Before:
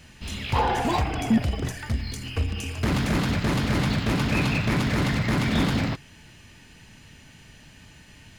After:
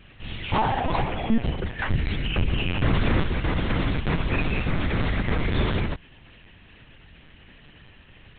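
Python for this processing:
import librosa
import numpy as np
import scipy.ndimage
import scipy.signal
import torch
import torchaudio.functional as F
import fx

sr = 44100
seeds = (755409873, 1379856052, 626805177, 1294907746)

y = fx.lpc_vocoder(x, sr, seeds[0], excitation='pitch_kept', order=10)
y = fx.env_flatten(y, sr, amount_pct=50, at=(1.78, 3.22), fade=0.02)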